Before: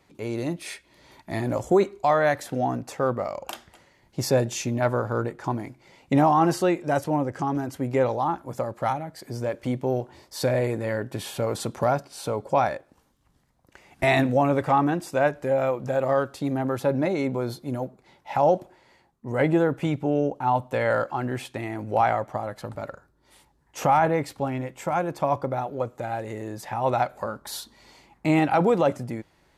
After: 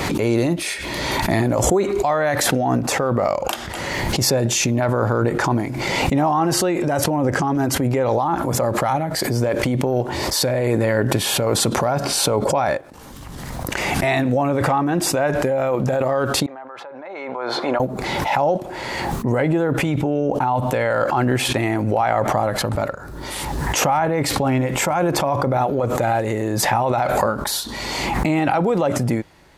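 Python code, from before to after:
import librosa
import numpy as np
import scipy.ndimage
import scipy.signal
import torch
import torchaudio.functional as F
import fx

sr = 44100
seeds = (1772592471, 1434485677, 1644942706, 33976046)

p1 = fx.over_compress(x, sr, threshold_db=-28.0, ratio=-0.5)
p2 = x + (p1 * 10.0 ** (3.0 / 20.0))
p3 = fx.ladder_bandpass(p2, sr, hz=1200.0, resonance_pct=20, at=(16.46, 17.8))
y = fx.pre_swell(p3, sr, db_per_s=22.0)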